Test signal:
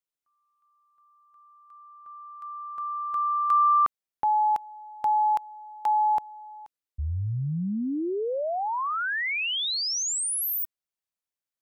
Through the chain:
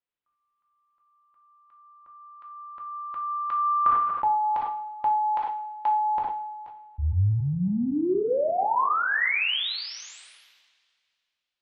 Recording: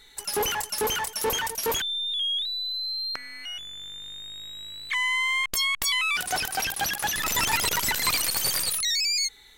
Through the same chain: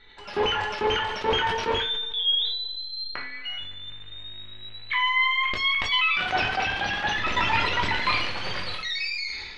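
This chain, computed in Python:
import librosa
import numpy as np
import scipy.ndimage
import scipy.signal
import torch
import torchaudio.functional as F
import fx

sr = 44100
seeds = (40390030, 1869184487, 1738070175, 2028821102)

y = scipy.signal.sosfilt(scipy.signal.butter(4, 3400.0, 'lowpass', fs=sr, output='sos'), x)
y = fx.rev_double_slope(y, sr, seeds[0], early_s=0.47, late_s=2.5, knee_db=-22, drr_db=0.0)
y = fx.sustainer(y, sr, db_per_s=36.0)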